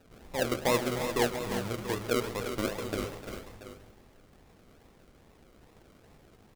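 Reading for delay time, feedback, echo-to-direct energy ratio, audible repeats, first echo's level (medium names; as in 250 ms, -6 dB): 131 ms, no regular repeats, -6.0 dB, 4, -18.0 dB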